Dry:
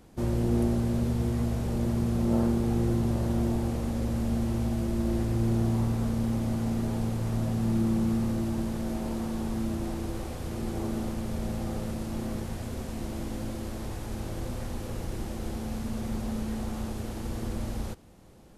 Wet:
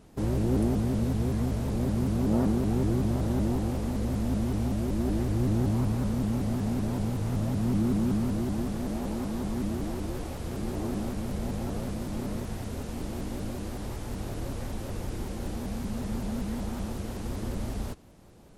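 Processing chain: vibrato with a chosen wave saw up 5.3 Hz, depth 250 cents

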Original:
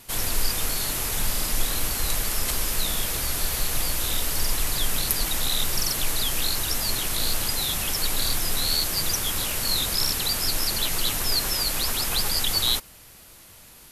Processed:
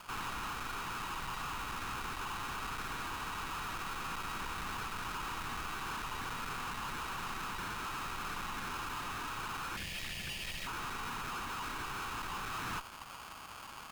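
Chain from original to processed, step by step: sample-and-hold 23×; spectral selection erased 9.77–10.66 s, 220–1700 Hz; wavefolder -22 dBFS; resonant low shelf 770 Hz -13.5 dB, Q 1.5; valve stage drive 41 dB, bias 0.55; gain riding within 4 dB 0.5 s; trim +3.5 dB

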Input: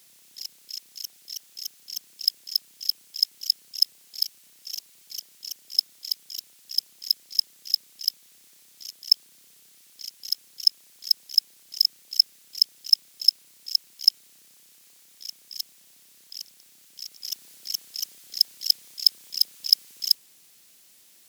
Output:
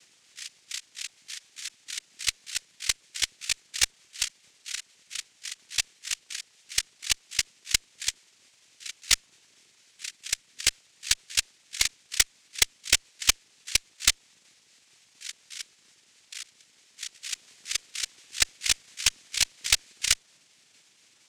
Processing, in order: sawtooth pitch modulation +9 st, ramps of 233 ms; noise-vocoded speech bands 3; Chebyshev shaper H 5 -8 dB, 8 -18 dB, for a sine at 2 dBFS; trim -8.5 dB

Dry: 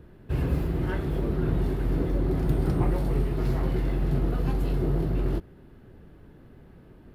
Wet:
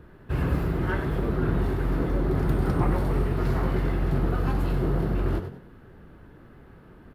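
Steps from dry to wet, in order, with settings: peaking EQ 1.3 kHz +7.5 dB 1.3 oct; on a send: frequency-shifting echo 96 ms, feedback 31%, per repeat +45 Hz, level -9 dB

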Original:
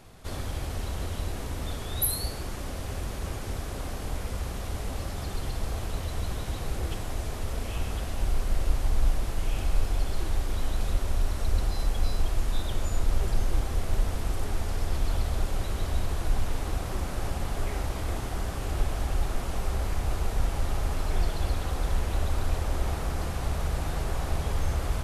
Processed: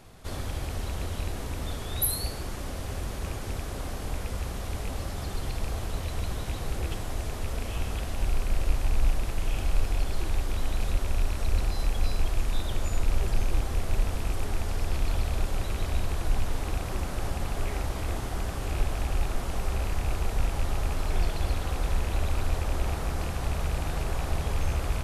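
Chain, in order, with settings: rattle on loud lows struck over -26 dBFS, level -30 dBFS

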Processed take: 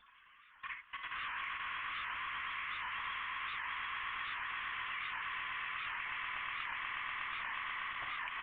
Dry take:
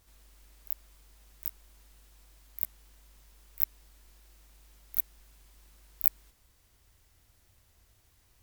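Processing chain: formants replaced by sine waves; low-pass 2.3 kHz 12 dB/octave; LPC vocoder at 8 kHz whisper; compression 6:1, threshold -41 dBFS, peak gain reduction 14 dB; on a send: echo with a slow build-up 121 ms, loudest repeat 8, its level -6.5 dB; on the sum: level held to a coarse grid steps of 22 dB; gated-style reverb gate 100 ms flat, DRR 4 dB; warped record 78 rpm, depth 160 cents; trim +1.5 dB

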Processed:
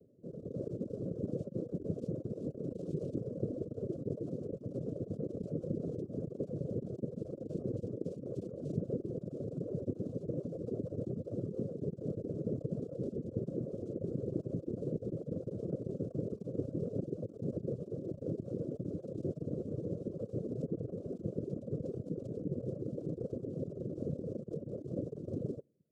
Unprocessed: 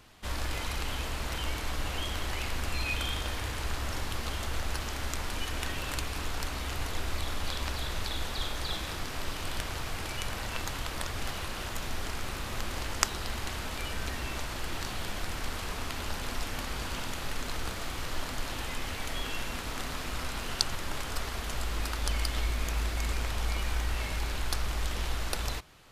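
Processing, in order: reverb removal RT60 1.8 s; static phaser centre 420 Hz, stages 8; saturation -35.5 dBFS, distortion -10 dB; noise-vocoded speech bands 3; elliptic low-pass 540 Hz, stop band 40 dB; on a send at -24 dB: reverberation RT60 0.75 s, pre-delay 3 ms; on the sum: reverb removal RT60 0.62 s; level rider gain up to 11 dB; trim +5.5 dB

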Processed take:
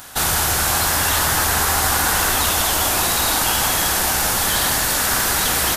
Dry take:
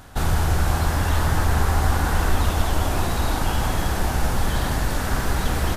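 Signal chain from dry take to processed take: tilt EQ +3.5 dB/octave; trim +5.5 dB

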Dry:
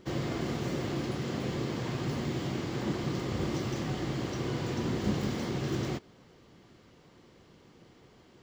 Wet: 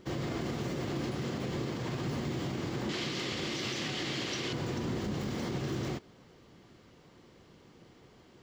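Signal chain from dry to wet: 2.89–4.53 s: frequency weighting D; peak limiter -26 dBFS, peak gain reduction 8.5 dB

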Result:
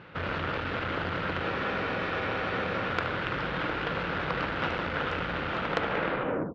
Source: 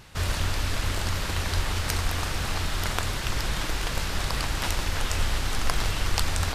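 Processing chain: tape stop on the ending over 1.19 s; cabinet simulation 120–3000 Hz, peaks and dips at 170 Hz +6 dB, 310 Hz +5 dB, 500 Hz +9 dB, 1.4 kHz +8 dB; on a send: delay 74 ms -8.5 dB; on the sum: spectral freeze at 1.43 s, 1.45 s; transformer saturation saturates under 1.8 kHz

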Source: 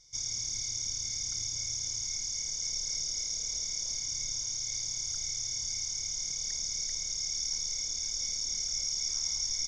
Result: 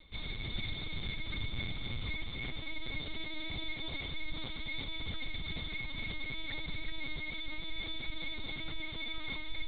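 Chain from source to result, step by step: in parallel at +3 dB: peak limiter -30 dBFS, peak gain reduction 9.5 dB; on the sum: bucket-brigade echo 499 ms, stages 2048, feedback 46%, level -6.5 dB; LPC vocoder at 8 kHz pitch kept; trim +5 dB

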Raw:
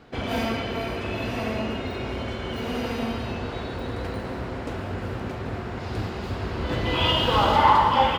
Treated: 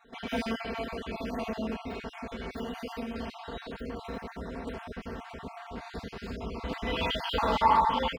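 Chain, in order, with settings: random holes in the spectrogram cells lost 37%; comb 4.4 ms, depth 88%; 2.63–3.16 s: compression, threshold -25 dBFS, peak gain reduction 6 dB; trim -8 dB

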